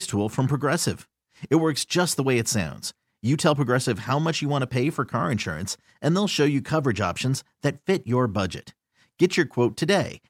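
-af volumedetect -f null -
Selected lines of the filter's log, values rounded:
mean_volume: -24.3 dB
max_volume: -6.6 dB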